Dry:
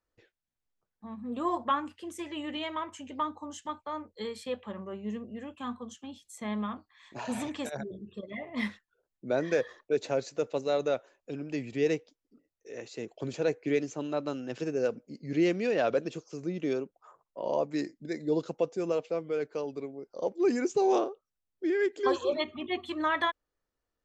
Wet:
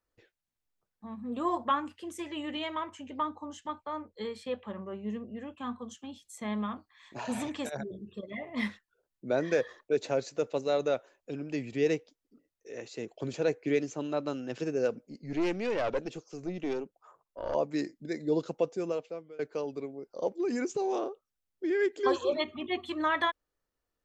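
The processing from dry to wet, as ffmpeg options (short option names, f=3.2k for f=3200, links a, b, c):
-filter_complex "[0:a]asettb=1/sr,asplit=3[a][b][c];[a]atrim=end=2.894[d];[b]atrim=start=2.89:end=5.79,asetpts=PTS-STARTPTS,afade=t=in:d=0.004:c=qsin,afade=t=out:st=2.896:d=0.004:c=qsin,lowpass=f=3.9k:p=1[e];[c]atrim=start=5.786[f];[d][e]acrossfade=d=0.004:c1=hsin:c2=qsin[g];[g][f]acrossfade=d=0.004:c1=qsin:c2=hsin,asettb=1/sr,asplit=3[h][i][j];[h]atrim=end=15.074[k];[i]atrim=start=15.07:end=17.55,asetpts=PTS-STARTPTS,afade=t=in:d=0.004:c=qsin,afade=t=out:st=2.476:d=0.004:c=qsin,aeval=exprs='(tanh(15.8*val(0)+0.45)-tanh(0.45))/15.8':c=same[l];[j]atrim=start=17.546[m];[k][l]acrossfade=d=0.004:c1=hsin:c2=qsin[n];[n][m]acrossfade=d=0.004:c1=qsin:c2=hsin,asettb=1/sr,asplit=3[o][p][q];[o]atrim=end=20.384[r];[p]atrim=start=20.38:end=21.71,asetpts=PTS-STARTPTS,afade=t=in:d=0.004:c=qsin,afade=t=out:st=1.326:d=0.004:c=qsin,acompressor=threshold=-27dB:ratio=6:attack=3.2:release=140:knee=1:detection=peak[s];[q]atrim=start=21.706[t];[r][s]acrossfade=d=0.004:c1=hsin:c2=qsin[u];[u][t]acrossfade=d=0.004:c1=qsin:c2=hsin,asplit=2[v][w];[v]atrim=end=19.39,asetpts=PTS-STARTPTS,afade=t=out:st=18.7:d=0.69:silence=0.0749894[x];[w]atrim=start=19.39,asetpts=PTS-STARTPTS,afade=t=in:d=0.004:c=hsin:silence=0.0749894[y];[x][y]concat=n=2:v=0:a=1"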